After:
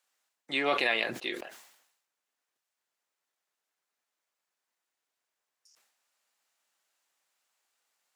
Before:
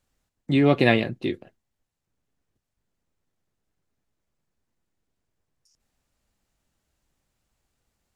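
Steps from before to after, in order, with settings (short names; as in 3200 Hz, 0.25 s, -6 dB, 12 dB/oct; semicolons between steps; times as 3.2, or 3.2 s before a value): HPF 860 Hz 12 dB/oct; limiter -17.5 dBFS, peak gain reduction 9 dB; sustainer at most 69 dB/s; gain +1.5 dB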